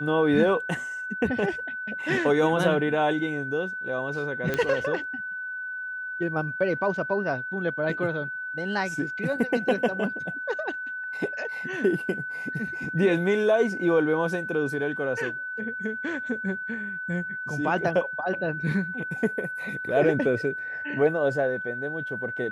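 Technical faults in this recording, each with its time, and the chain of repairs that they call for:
whine 1.5 kHz -31 dBFS
4.54 s: pop -13 dBFS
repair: de-click; band-stop 1.5 kHz, Q 30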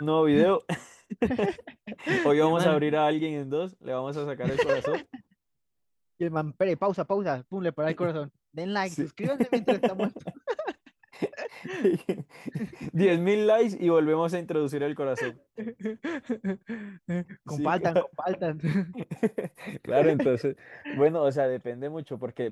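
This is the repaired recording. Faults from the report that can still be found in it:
nothing left

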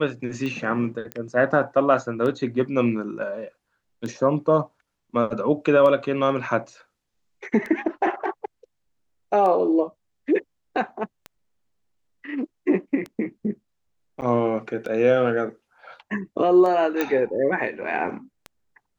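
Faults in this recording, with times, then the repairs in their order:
tick 33 1/3 rpm -19 dBFS
1.12 s: pop -16 dBFS
14.21–14.22 s: dropout 9.4 ms
17.01 s: pop -10 dBFS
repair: de-click; interpolate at 14.21 s, 9.4 ms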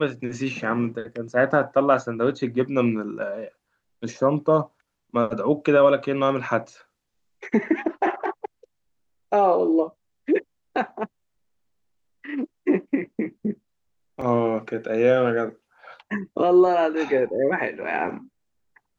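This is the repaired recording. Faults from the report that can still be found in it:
nothing left

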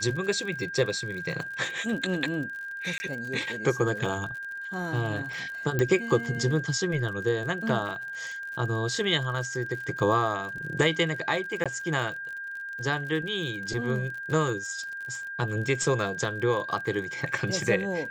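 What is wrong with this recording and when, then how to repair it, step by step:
crackle 51 per s -36 dBFS
whine 1.6 kHz -34 dBFS
2.98–3.00 s: dropout 20 ms
5.79 s: pop -13 dBFS
11.64–11.66 s: dropout 16 ms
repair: de-click; band-stop 1.6 kHz, Q 30; interpolate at 2.98 s, 20 ms; interpolate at 11.64 s, 16 ms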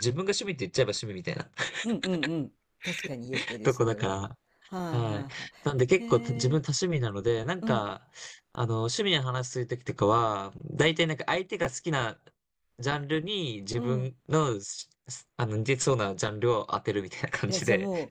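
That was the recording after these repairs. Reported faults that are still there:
5.79 s: pop

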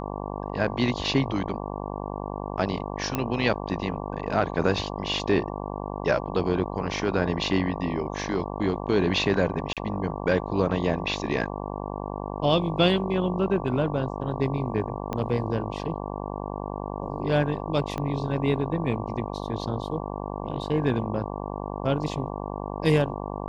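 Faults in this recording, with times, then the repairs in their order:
buzz 50 Hz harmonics 23 -33 dBFS
3.15 s: pop -11 dBFS
9.73–9.77 s: dropout 37 ms
15.13 s: pop -16 dBFS
17.98 s: pop -17 dBFS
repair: de-click; de-hum 50 Hz, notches 23; interpolate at 9.73 s, 37 ms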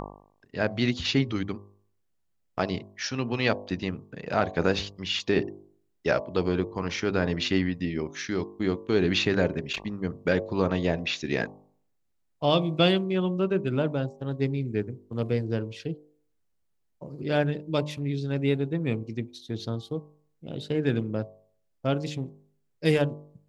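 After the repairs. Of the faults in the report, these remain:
15.13 s: pop
17.98 s: pop

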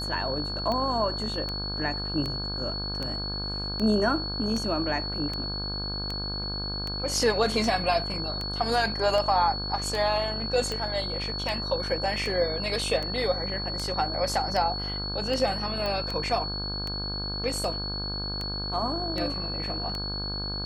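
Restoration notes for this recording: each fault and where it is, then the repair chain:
buzz 50 Hz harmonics 33 -35 dBFS
tick 78 rpm -18 dBFS
whine 4.4 kHz -32 dBFS
15.86 s: pop -18 dBFS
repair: de-click; de-hum 50 Hz, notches 33; band-stop 4.4 kHz, Q 30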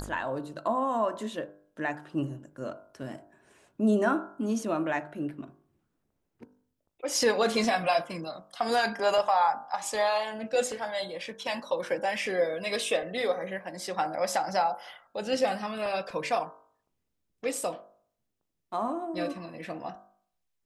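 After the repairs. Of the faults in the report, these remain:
nothing left

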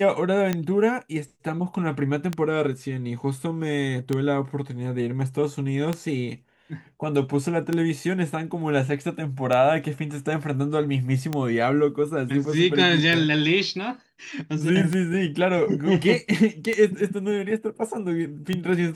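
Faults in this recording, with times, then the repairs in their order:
tick 33 1/3 rpm -11 dBFS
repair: de-click

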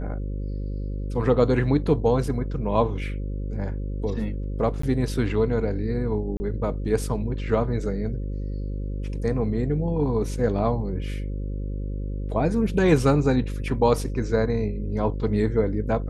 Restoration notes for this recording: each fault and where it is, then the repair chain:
buzz 50 Hz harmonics 11 -29 dBFS
4.82–4.83 s: dropout 14 ms
6.37–6.40 s: dropout 30 ms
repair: de-hum 50 Hz, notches 11; interpolate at 4.82 s, 14 ms; interpolate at 6.37 s, 30 ms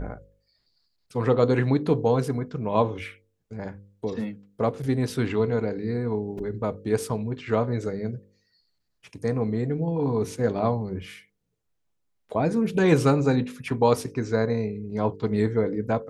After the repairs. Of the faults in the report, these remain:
nothing left

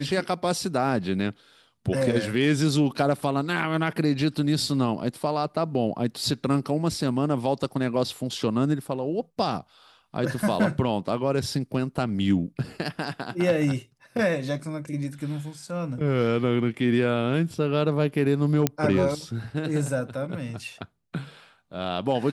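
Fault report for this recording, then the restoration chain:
18.67 s: pop -6 dBFS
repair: de-click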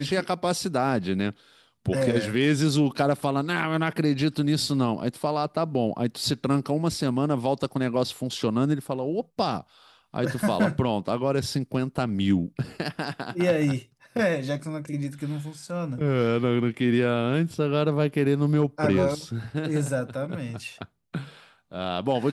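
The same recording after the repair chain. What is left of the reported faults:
nothing left

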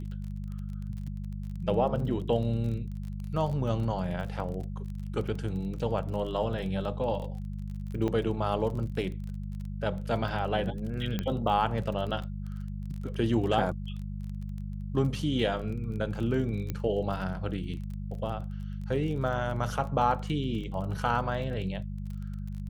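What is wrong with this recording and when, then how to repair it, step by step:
crackle 29 per s -37 dBFS
hum 50 Hz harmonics 4 -36 dBFS
8.08–8.09 s: dropout 5 ms
11.19 s: pop -17 dBFS
16.70 s: pop -19 dBFS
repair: de-click; de-hum 50 Hz, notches 4; interpolate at 8.08 s, 5 ms

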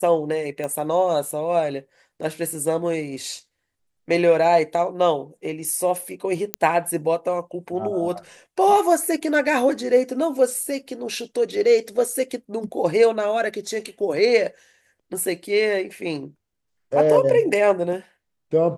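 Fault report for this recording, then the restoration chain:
0.64 s: pop -17 dBFS
6.54 s: pop -4 dBFS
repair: de-click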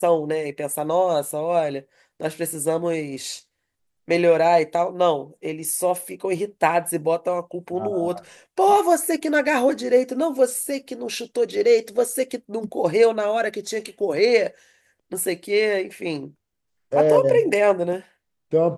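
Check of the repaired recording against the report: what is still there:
nothing left

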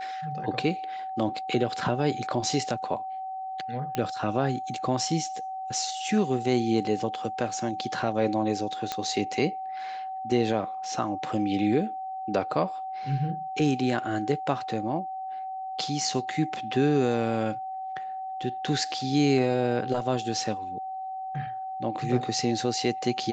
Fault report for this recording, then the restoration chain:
whine 760 Hz -32 dBFS
3.95 s: pop -15 dBFS
8.92 s: pop -13 dBFS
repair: de-click; band-stop 760 Hz, Q 30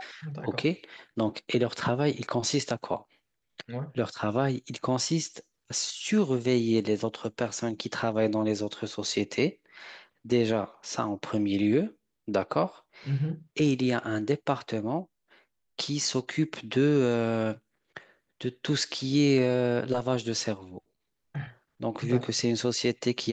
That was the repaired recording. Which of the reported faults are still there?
8.92 s: pop

